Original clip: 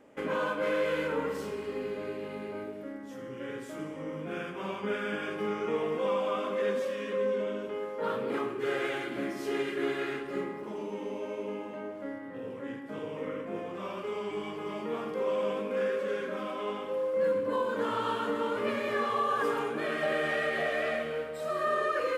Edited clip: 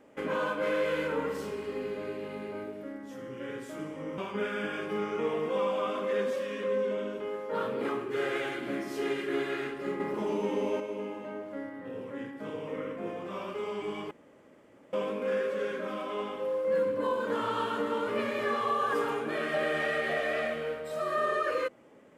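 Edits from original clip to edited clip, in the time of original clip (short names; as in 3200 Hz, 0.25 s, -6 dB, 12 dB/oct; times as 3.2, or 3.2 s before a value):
4.18–4.67 cut
10.49–11.29 gain +6.5 dB
14.6–15.42 room tone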